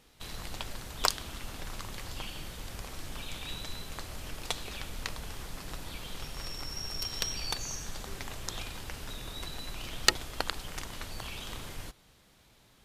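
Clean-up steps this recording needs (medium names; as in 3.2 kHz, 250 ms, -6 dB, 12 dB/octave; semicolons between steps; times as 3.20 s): clip repair -5 dBFS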